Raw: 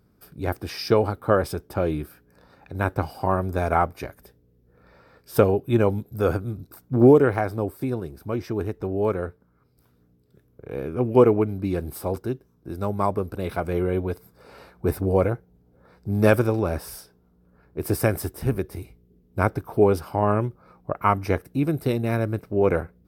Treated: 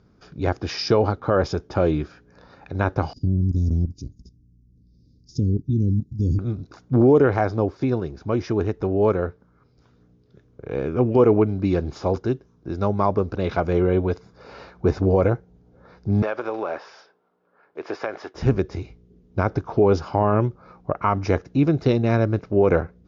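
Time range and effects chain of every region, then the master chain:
0:03.13–0:06.39: elliptic band-stop filter 280–5,200 Hz, stop band 70 dB + low-shelf EQ 210 Hz +10 dB + output level in coarse steps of 12 dB
0:16.22–0:18.35: one scale factor per block 7 bits + band-pass filter 570–2,800 Hz + downward compressor 5 to 1, threshold −26 dBFS
whole clip: Chebyshev low-pass filter 7,000 Hz, order 10; dynamic equaliser 2,100 Hz, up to −3 dB, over −38 dBFS, Q 0.9; boost into a limiter +11.5 dB; level −6 dB

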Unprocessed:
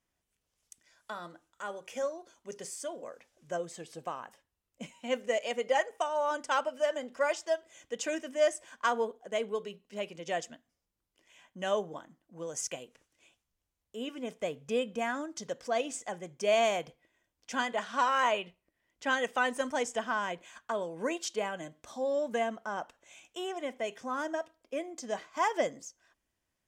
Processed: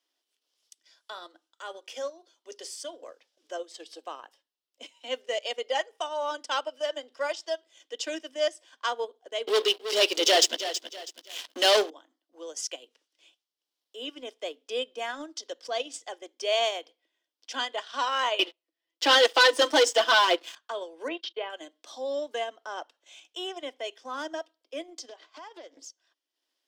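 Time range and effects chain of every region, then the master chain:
0:09.47–0:11.90: high-shelf EQ 3,600 Hz +8 dB + leveller curve on the samples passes 5 + feedback echo at a low word length 324 ms, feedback 35%, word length 9 bits, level −11 dB
0:18.39–0:20.55: low-shelf EQ 320 Hz +4.5 dB + comb filter 6 ms, depth 98% + leveller curve on the samples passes 3
0:21.08–0:21.50: noise gate −45 dBFS, range −32 dB + low-pass filter 3,300 Hz 24 dB per octave + upward compression, threshold −38 dBFS
0:25.09–0:25.84: high-shelf EQ 5,300 Hz −7.5 dB + downward compressor 5 to 1, threshold −43 dBFS + highs frequency-modulated by the lows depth 0.24 ms
whole clip: Butterworth high-pass 270 Hz 72 dB per octave; flat-topped bell 4,000 Hz +10 dB 1.1 octaves; transient designer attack −2 dB, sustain −8 dB

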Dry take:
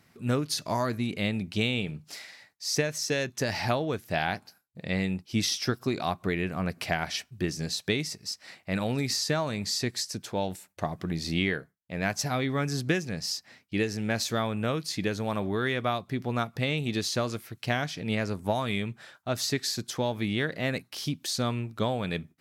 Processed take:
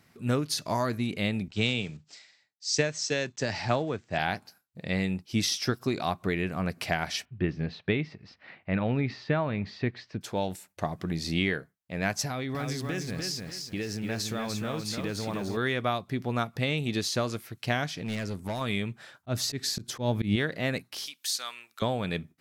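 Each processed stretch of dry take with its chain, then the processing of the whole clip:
0:01.48–0:04.19: one scale factor per block 5 bits + elliptic low-pass filter 7,800 Hz + multiband upward and downward expander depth 70%
0:07.25–0:10.21: low-pass filter 2,900 Hz 24 dB per octave + low-shelf EQ 160 Hz +4.5 dB
0:12.25–0:15.57: downward compressor, threshold −29 dBFS + feedback echo at a low word length 297 ms, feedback 35%, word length 9 bits, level −4 dB
0:17.93–0:18.61: dynamic equaliser 820 Hz, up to −5 dB, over −40 dBFS, Q 0.74 + hard clipping −28.5 dBFS
0:19.14–0:20.36: low-shelf EQ 310 Hz +10 dB + volume swells 117 ms
0:21.06–0:21.82: high-pass filter 1,400 Hz + high-shelf EQ 8,900 Hz +6 dB
whole clip: no processing

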